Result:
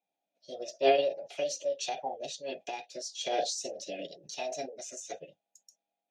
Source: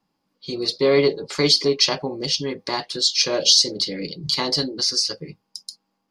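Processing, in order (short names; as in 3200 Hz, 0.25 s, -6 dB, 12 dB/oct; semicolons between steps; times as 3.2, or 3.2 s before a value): vowel filter e; formant shift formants +5 st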